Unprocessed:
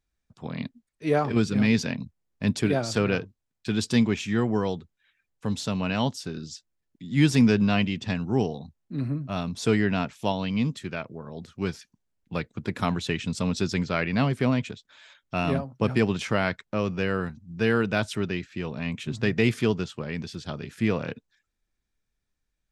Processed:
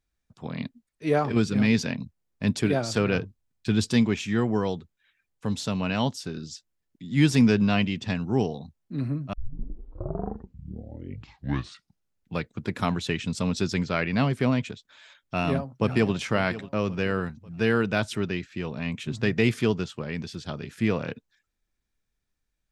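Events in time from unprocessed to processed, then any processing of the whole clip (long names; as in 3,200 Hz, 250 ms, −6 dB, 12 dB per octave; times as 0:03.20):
0:03.15–0:03.90: low-shelf EQ 160 Hz +8 dB
0:09.33: tape start 3.05 s
0:15.37–0:16.14: delay throw 540 ms, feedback 45%, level −15 dB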